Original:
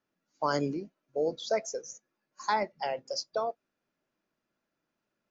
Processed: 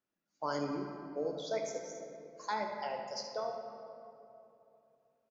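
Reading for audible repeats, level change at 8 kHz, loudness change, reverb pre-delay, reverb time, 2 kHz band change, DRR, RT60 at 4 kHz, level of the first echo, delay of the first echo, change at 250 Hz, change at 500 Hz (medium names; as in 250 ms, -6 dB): 1, no reading, -6.5 dB, 11 ms, 2.9 s, -6.5 dB, 2.0 dB, 1.5 s, -10.5 dB, 76 ms, -4.0 dB, -5.5 dB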